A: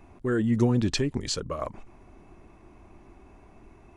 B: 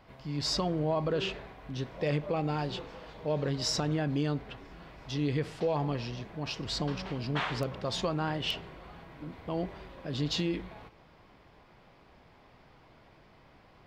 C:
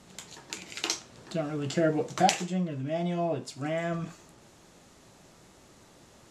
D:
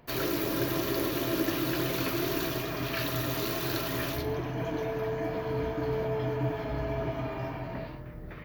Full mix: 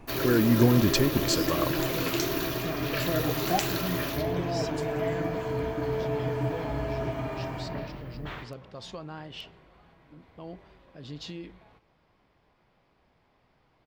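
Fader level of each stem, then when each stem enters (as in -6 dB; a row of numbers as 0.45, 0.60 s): +2.0, -9.0, -4.5, +1.0 dB; 0.00, 0.90, 1.30, 0.00 s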